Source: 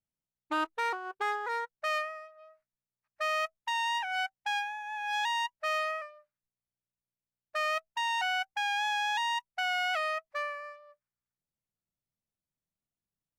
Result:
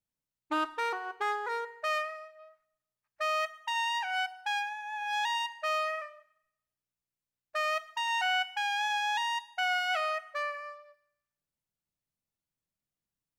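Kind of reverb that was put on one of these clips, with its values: FDN reverb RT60 0.84 s, low-frequency decay 0.75×, high-frequency decay 0.9×, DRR 11.5 dB

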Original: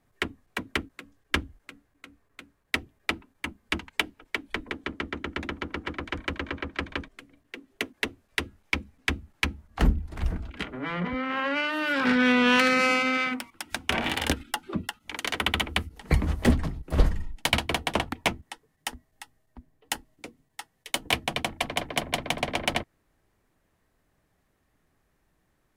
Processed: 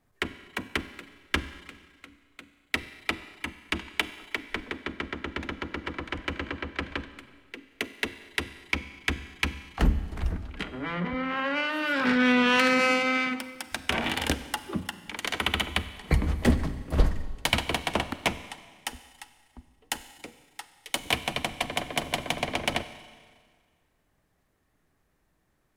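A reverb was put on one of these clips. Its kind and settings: Schroeder reverb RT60 1.7 s, combs from 31 ms, DRR 12.5 dB; trim -1 dB

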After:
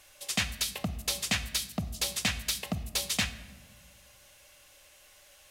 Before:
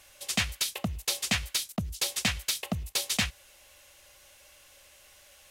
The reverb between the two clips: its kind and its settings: simulated room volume 890 m³, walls mixed, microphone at 0.43 m; trim -1.5 dB

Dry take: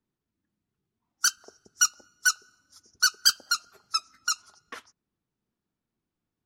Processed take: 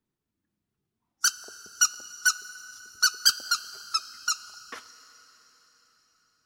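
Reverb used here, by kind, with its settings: plate-style reverb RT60 4.7 s, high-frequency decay 0.95×, DRR 14.5 dB

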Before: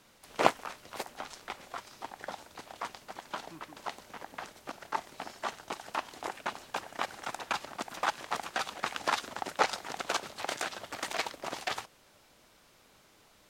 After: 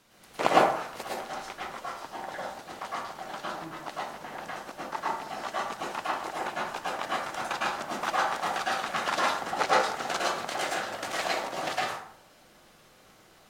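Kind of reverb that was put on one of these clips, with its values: plate-style reverb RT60 0.64 s, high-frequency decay 0.5×, pre-delay 95 ms, DRR -6.5 dB; trim -2 dB

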